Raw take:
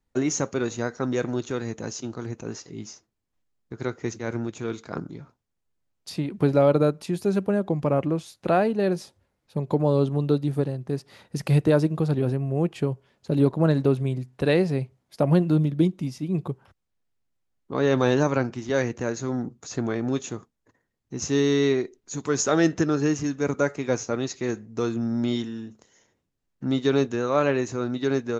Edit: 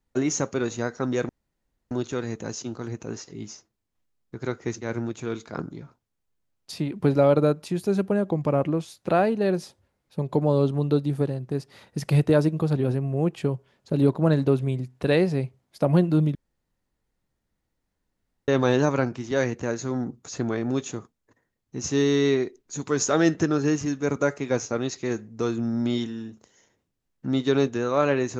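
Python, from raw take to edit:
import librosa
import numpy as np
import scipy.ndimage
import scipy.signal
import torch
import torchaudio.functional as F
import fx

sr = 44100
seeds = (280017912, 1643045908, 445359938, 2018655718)

y = fx.edit(x, sr, fx.insert_room_tone(at_s=1.29, length_s=0.62),
    fx.room_tone_fill(start_s=15.73, length_s=2.13), tone=tone)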